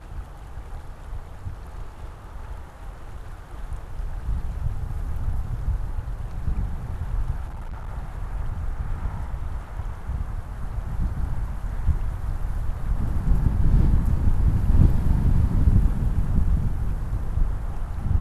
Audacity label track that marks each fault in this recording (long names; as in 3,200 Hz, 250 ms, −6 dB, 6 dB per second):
7.470000	7.890000	clipping −29.5 dBFS